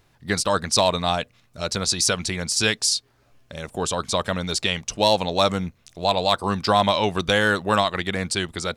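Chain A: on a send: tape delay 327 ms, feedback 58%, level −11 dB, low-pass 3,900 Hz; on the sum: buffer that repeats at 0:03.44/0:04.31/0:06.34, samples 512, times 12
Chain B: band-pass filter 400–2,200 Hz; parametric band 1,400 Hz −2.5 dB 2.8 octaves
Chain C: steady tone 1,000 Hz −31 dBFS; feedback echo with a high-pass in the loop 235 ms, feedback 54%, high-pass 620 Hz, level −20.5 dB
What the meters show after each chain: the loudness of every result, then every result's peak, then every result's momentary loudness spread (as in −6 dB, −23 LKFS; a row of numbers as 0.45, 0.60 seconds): −22.0, −27.5, −22.0 LKFS; −5.0, −8.5, −5.5 dBFS; 9, 13, 8 LU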